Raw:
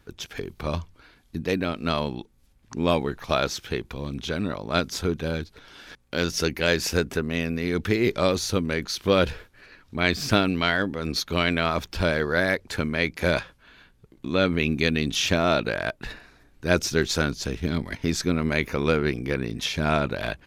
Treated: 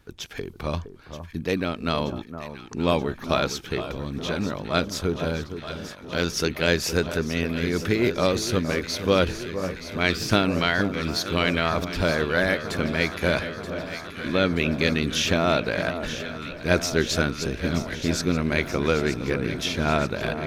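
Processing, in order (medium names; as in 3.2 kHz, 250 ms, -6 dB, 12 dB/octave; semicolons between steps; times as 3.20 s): echo whose repeats swap between lows and highs 464 ms, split 1.3 kHz, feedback 85%, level -10 dB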